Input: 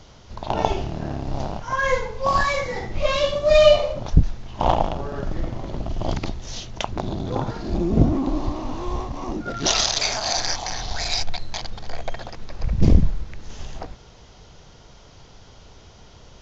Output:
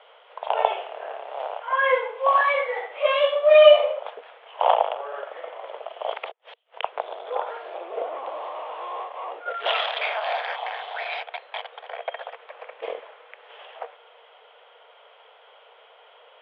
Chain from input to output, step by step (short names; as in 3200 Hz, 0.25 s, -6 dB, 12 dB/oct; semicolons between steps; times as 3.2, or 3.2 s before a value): 6.31–6.83 flipped gate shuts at -22 dBFS, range -37 dB; Chebyshev band-pass 460–3300 Hz, order 5; gain +2 dB